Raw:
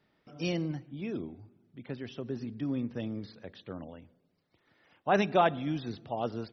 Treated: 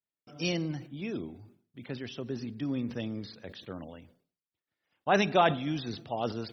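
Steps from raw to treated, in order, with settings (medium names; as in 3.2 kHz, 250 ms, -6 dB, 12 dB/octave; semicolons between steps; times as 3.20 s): expander -53 dBFS; treble shelf 2.5 kHz +8 dB; decay stretcher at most 140 dB/s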